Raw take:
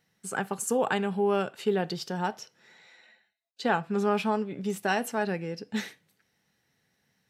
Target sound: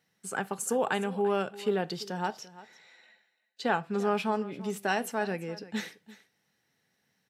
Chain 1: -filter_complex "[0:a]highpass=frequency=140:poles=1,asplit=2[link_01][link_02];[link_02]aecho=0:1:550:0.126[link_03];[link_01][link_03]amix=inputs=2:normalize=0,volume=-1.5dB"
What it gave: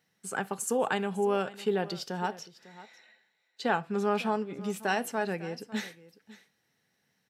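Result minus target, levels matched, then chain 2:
echo 209 ms late
-filter_complex "[0:a]highpass=frequency=140:poles=1,asplit=2[link_01][link_02];[link_02]aecho=0:1:341:0.126[link_03];[link_01][link_03]amix=inputs=2:normalize=0,volume=-1.5dB"

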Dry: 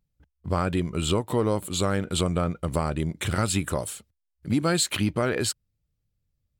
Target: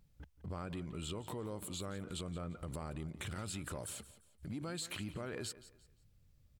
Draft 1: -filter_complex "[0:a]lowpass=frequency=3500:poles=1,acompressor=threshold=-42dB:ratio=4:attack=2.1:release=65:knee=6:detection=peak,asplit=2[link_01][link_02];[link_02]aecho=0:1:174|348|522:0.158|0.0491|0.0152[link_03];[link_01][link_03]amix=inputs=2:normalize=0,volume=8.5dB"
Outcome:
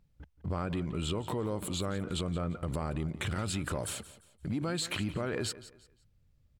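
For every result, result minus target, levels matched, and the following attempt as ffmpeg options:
downward compressor: peak gain reduction −9 dB; 8,000 Hz band −3.0 dB
-filter_complex "[0:a]lowpass=frequency=3500:poles=1,acompressor=threshold=-54dB:ratio=4:attack=2.1:release=65:knee=6:detection=peak,asplit=2[link_01][link_02];[link_02]aecho=0:1:174|348|522:0.158|0.0491|0.0152[link_03];[link_01][link_03]amix=inputs=2:normalize=0,volume=8.5dB"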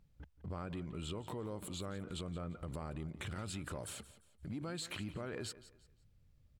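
8,000 Hz band −3.0 dB
-filter_complex "[0:a]lowpass=frequency=12000:poles=1,acompressor=threshold=-54dB:ratio=4:attack=2.1:release=65:knee=6:detection=peak,asplit=2[link_01][link_02];[link_02]aecho=0:1:174|348|522:0.158|0.0491|0.0152[link_03];[link_01][link_03]amix=inputs=2:normalize=0,volume=8.5dB"

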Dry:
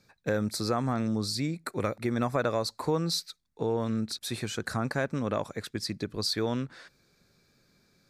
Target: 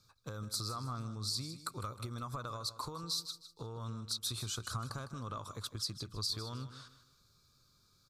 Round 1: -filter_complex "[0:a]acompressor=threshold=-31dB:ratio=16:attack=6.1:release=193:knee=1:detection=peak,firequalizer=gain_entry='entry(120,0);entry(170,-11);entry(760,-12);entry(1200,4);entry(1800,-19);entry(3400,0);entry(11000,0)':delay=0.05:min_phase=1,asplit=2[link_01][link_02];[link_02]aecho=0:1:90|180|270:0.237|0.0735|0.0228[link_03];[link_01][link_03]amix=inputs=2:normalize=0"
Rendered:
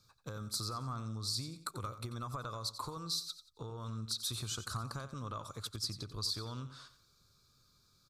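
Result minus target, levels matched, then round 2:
echo 66 ms early
-filter_complex "[0:a]acompressor=threshold=-31dB:ratio=16:attack=6.1:release=193:knee=1:detection=peak,firequalizer=gain_entry='entry(120,0);entry(170,-11);entry(760,-12);entry(1200,4);entry(1800,-19);entry(3400,0);entry(11000,0)':delay=0.05:min_phase=1,asplit=2[link_01][link_02];[link_02]aecho=0:1:156|312|468:0.237|0.0735|0.0228[link_03];[link_01][link_03]amix=inputs=2:normalize=0"

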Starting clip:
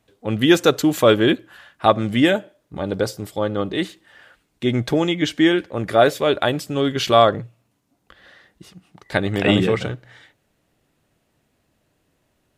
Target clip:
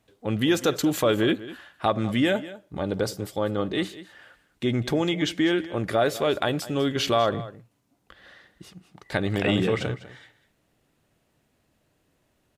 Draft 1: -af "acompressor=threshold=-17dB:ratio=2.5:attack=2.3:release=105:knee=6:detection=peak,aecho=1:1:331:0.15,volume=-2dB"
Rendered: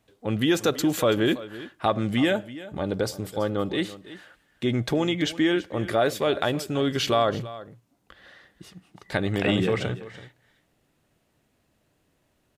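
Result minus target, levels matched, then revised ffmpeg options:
echo 132 ms late
-af "acompressor=threshold=-17dB:ratio=2.5:attack=2.3:release=105:knee=6:detection=peak,aecho=1:1:199:0.15,volume=-2dB"

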